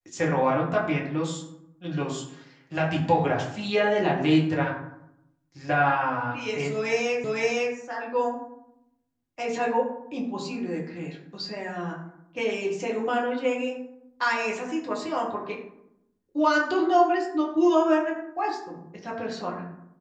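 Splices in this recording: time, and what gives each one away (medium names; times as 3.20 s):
7.24 s: repeat of the last 0.51 s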